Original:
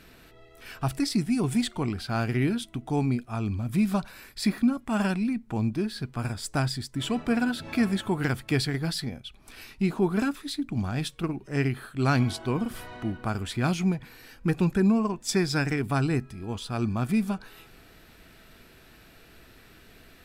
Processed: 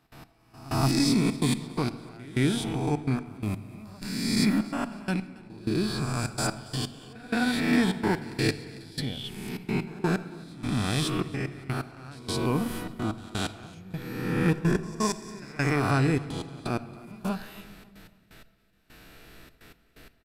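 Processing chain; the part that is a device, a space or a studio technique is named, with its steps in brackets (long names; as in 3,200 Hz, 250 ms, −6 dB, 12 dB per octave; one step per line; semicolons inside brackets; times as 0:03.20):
peak hold with a rise ahead of every peak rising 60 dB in 1.54 s
trance gate with a delay (gate pattern ".x....xxxxx.x." 127 BPM −24 dB; repeating echo 277 ms, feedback 39%, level −22 dB)
echo ahead of the sound 172 ms −21 dB
rectangular room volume 1,600 cubic metres, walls mixed, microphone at 0.44 metres
level −1 dB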